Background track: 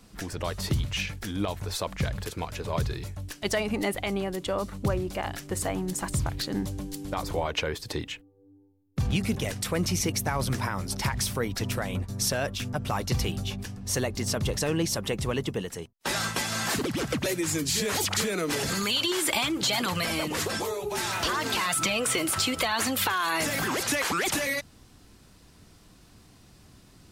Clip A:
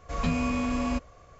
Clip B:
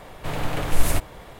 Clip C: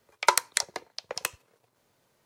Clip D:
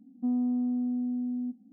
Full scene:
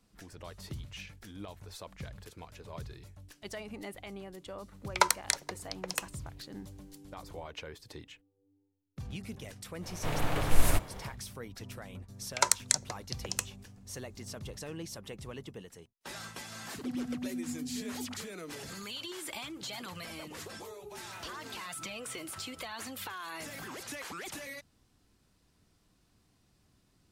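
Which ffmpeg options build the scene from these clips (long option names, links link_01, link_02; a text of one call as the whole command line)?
ffmpeg -i bed.wav -i cue0.wav -i cue1.wav -i cue2.wav -i cue3.wav -filter_complex "[3:a]asplit=2[link_01][link_02];[0:a]volume=-15dB[link_03];[link_02]equalizer=frequency=7100:width_type=o:width=0.97:gain=11[link_04];[4:a]flanger=delay=16.5:depth=5.3:speed=2.6[link_05];[link_01]atrim=end=2.25,asetpts=PTS-STARTPTS,volume=-3.5dB,afade=type=in:duration=0.004:curve=hsin,afade=type=out:start_time=2.246:duration=0.004:curve=hsin,adelay=208593S[link_06];[2:a]atrim=end=1.39,asetpts=PTS-STARTPTS,volume=-4.5dB,afade=type=in:duration=0.1,afade=type=out:start_time=1.29:duration=0.1,adelay=9790[link_07];[link_04]atrim=end=2.25,asetpts=PTS-STARTPTS,volume=-7.5dB,afade=type=in:duration=0.004:curve=hsin,afade=type=out:start_time=2.246:duration=0.004:curve=hsin,adelay=12140[link_08];[link_05]atrim=end=1.72,asetpts=PTS-STARTPTS,volume=-6.5dB,afade=type=in:duration=0.004:curve=hsin,afade=type=out:start_time=1.716:duration=0.004:curve=hsin,adelay=16610[link_09];[link_03][link_06][link_07][link_08][link_09]amix=inputs=5:normalize=0" out.wav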